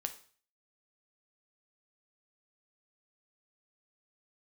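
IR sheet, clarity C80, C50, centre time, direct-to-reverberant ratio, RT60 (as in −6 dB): 17.5 dB, 13.0 dB, 8 ms, 7.0 dB, 0.45 s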